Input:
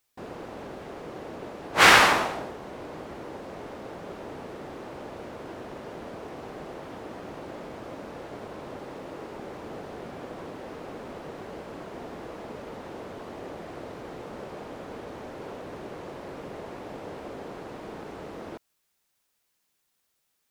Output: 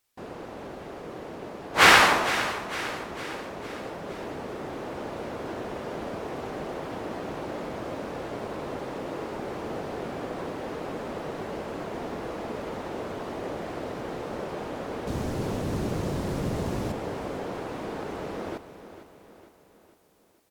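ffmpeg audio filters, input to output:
-filter_complex "[0:a]asettb=1/sr,asplit=3[a][b][c];[a]atrim=end=15.074[d];[b]atrim=start=15.07:end=16.92,asetpts=PTS-STARTPTS,afade=t=in:d=0.004:c=qsin,afade=t=out:st=1.846:d=0.004:c=qsin,bass=f=250:g=14,treble=f=4k:g=10[e];[c]atrim=start=16.916[f];[d][e]acrossfade=d=0.004:c1=hsin:c2=qsin[g];[g][f]acrossfade=d=0.004:c1=qsin:c2=hsin,aecho=1:1:456|912|1368|1824|2280:0.237|0.121|0.0617|0.0315|0.016,dynaudnorm=f=330:g=13:m=5dB" -ar 48000 -c:a aac -b:a 96k

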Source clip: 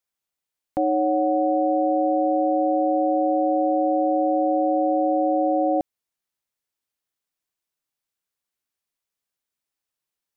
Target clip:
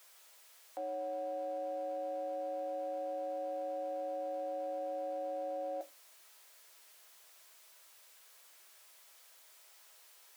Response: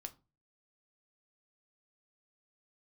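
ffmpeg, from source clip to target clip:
-filter_complex "[0:a]aeval=exprs='val(0)+0.5*0.0112*sgn(val(0))':c=same,highpass=f=470:w=0.5412,highpass=f=470:w=1.3066[a];[1:a]atrim=start_sample=2205,asetrate=79380,aresample=44100[b];[a][b]afir=irnorm=-1:irlink=0,volume=-4.5dB"

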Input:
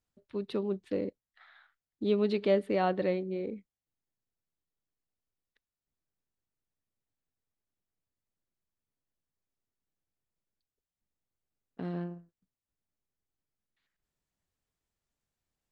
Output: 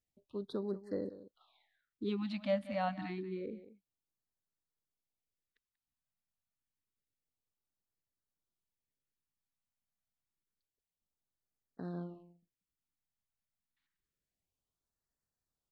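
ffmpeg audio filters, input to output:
-filter_complex "[0:a]asplit=2[a][b];[b]aecho=0:1:187:0.178[c];[a][c]amix=inputs=2:normalize=0,afftfilt=real='re*(1-between(b*sr/1024,370*pow(2900/370,0.5+0.5*sin(2*PI*0.28*pts/sr))/1.41,370*pow(2900/370,0.5+0.5*sin(2*PI*0.28*pts/sr))*1.41))':imag='im*(1-between(b*sr/1024,370*pow(2900/370,0.5+0.5*sin(2*PI*0.28*pts/sr))/1.41,370*pow(2900/370,0.5+0.5*sin(2*PI*0.28*pts/sr))*1.41))':win_size=1024:overlap=0.75,volume=-5.5dB"

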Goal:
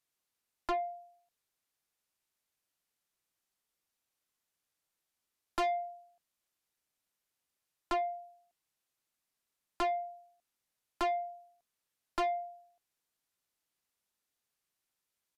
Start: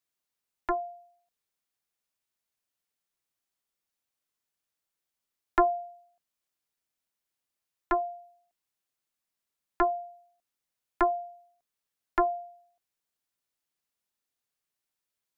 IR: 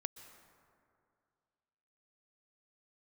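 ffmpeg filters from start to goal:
-af "asoftclip=type=tanh:threshold=-30dB,aresample=32000,aresample=44100,volume=1.5dB"

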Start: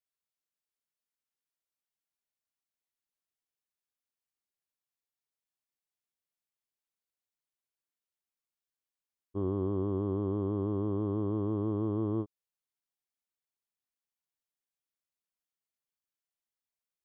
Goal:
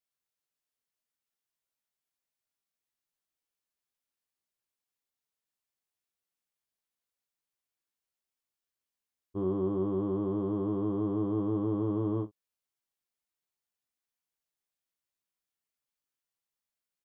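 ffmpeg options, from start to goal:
-af "aecho=1:1:16|53:0.596|0.178"

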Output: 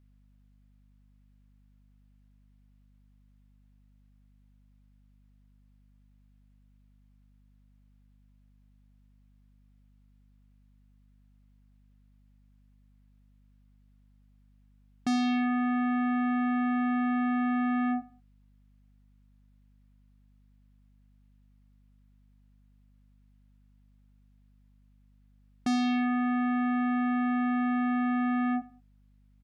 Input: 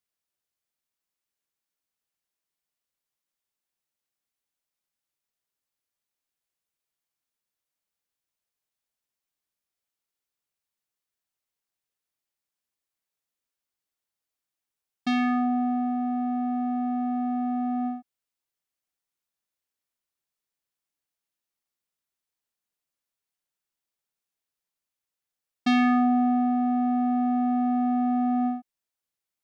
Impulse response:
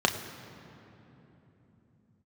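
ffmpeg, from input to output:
-filter_complex "[0:a]bass=f=250:g=-1,treble=f=4k:g=-13,alimiter=level_in=1.5dB:limit=-24dB:level=0:latency=1,volume=-1.5dB,aeval=exprs='val(0)+0.000355*(sin(2*PI*50*n/s)+sin(2*PI*2*50*n/s)/2+sin(2*PI*3*50*n/s)/3+sin(2*PI*4*50*n/s)/4+sin(2*PI*5*50*n/s)/5)':c=same,aeval=exprs='0.0562*sin(PI/2*1.78*val(0)/0.0562)':c=same,asplit=2[a][b];[b]adelay=95,lowpass=f=1.5k:p=1,volume=-19dB,asplit=2[c][d];[d]adelay=95,lowpass=f=1.5k:p=1,volume=0.29[e];[a][c][e]amix=inputs=3:normalize=0"

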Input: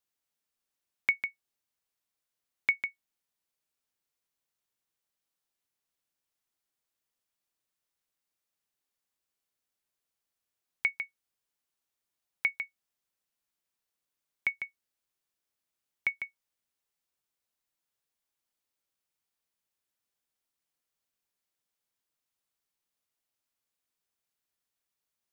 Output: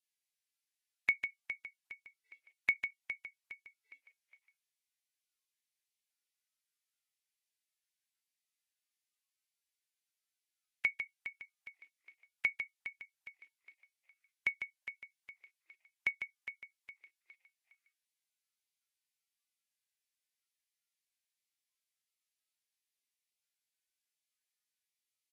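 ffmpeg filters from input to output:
-filter_complex "[0:a]asplit=2[a][b];[b]aecho=0:1:411|822|1233|1644:0.282|0.113|0.0451|0.018[c];[a][c]amix=inputs=2:normalize=0,volume=-3dB" -ar 32000 -c:a libvorbis -b:a 32k

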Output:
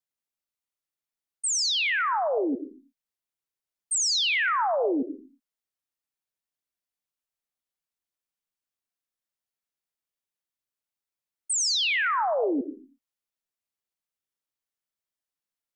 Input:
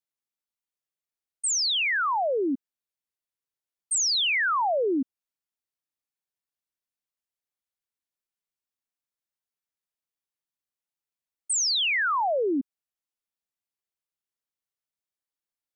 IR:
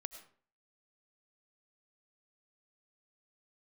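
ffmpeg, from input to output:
-filter_complex "[1:a]atrim=start_sample=2205,afade=t=out:st=0.42:d=0.01,atrim=end_sample=18963[a];[0:a][a]afir=irnorm=-1:irlink=0,volume=3dB"

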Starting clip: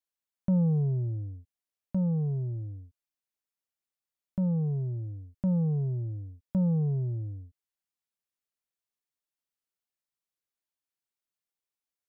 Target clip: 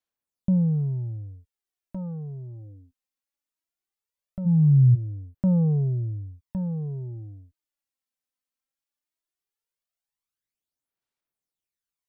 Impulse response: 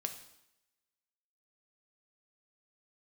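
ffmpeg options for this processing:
-filter_complex "[0:a]asplit=3[a][b][c];[a]afade=t=out:st=4.45:d=0.02[d];[b]asubboost=boost=10:cutoff=140,afade=t=in:st=4.45:d=0.02,afade=t=out:st=4.94:d=0.02[e];[c]afade=t=in:st=4.94:d=0.02[f];[d][e][f]amix=inputs=3:normalize=0,aphaser=in_gain=1:out_gain=1:delay=3.9:decay=0.59:speed=0.18:type=sinusoidal,volume=-2dB"

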